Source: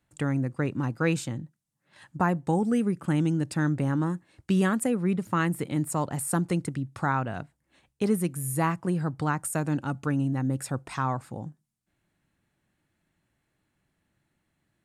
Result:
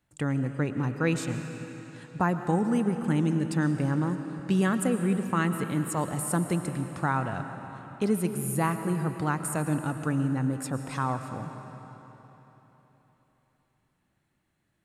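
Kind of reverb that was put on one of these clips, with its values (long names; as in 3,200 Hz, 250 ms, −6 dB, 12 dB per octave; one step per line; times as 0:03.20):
comb and all-pass reverb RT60 3.8 s, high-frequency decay 0.9×, pre-delay 75 ms, DRR 7.5 dB
level −1 dB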